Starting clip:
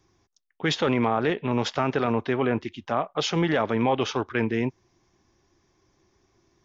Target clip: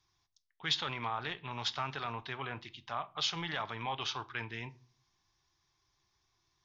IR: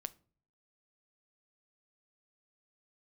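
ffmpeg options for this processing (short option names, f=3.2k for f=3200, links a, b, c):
-filter_complex "[0:a]equalizer=f=250:t=o:w=1:g=-11,equalizer=f=500:t=o:w=1:g=-10,equalizer=f=1k:t=o:w=1:g=5,equalizer=f=4k:t=o:w=1:g=11[a];[1:a]atrim=start_sample=2205[b];[a][b]afir=irnorm=-1:irlink=0,volume=-8.5dB"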